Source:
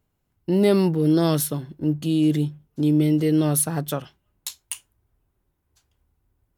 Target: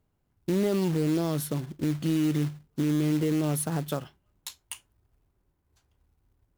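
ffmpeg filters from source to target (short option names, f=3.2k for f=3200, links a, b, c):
-af "highshelf=f=2.8k:g=-9,alimiter=limit=-18.5dB:level=0:latency=1:release=118,acrusher=bits=4:mode=log:mix=0:aa=0.000001"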